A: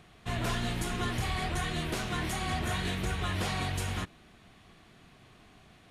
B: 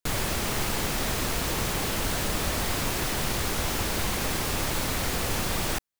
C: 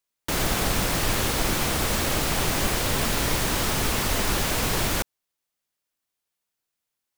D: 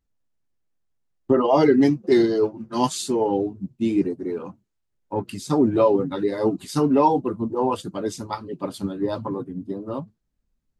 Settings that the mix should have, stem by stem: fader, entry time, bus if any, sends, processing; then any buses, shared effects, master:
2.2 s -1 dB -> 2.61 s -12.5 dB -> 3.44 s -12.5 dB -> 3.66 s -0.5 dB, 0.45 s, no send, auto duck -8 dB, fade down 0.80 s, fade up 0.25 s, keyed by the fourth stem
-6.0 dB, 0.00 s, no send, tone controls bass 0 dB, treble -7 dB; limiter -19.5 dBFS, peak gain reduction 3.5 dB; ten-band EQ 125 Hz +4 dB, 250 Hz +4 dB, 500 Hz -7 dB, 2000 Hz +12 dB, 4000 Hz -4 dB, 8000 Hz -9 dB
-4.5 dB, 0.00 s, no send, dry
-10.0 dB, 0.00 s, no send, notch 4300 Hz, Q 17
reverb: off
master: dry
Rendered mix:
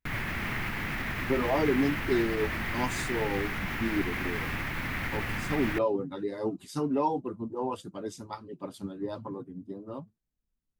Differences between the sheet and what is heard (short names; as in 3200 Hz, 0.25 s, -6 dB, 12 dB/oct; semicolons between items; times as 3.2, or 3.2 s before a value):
stem A: muted; stem C: muted